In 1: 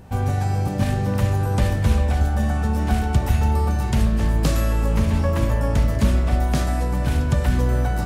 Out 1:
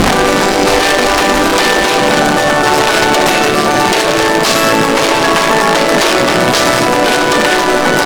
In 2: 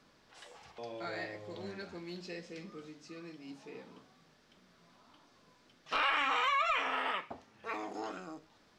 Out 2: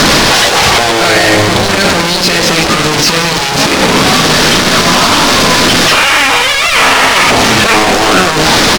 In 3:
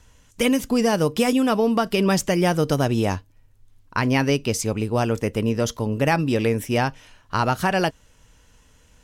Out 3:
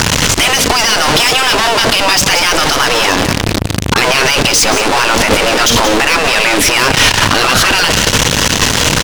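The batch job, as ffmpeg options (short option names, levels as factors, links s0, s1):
-filter_complex "[0:a]aeval=exprs='val(0)+0.5*0.075*sgn(val(0))':c=same,aemphasis=mode=reproduction:type=50kf,afftfilt=real='re*lt(hypot(re,im),0.251)':imag='im*lt(hypot(re,im),0.251)':win_size=1024:overlap=0.75,equalizer=f=5900:w=0.63:g=11,asoftclip=type=tanh:threshold=0.0794,acrossover=split=6800[s0][s1];[s0]adynamicsmooth=sensitivity=7.5:basefreq=4400[s2];[s2][s1]amix=inputs=2:normalize=0,aecho=1:1:180:0.237,alimiter=level_in=16.8:limit=0.891:release=50:level=0:latency=1,volume=0.891"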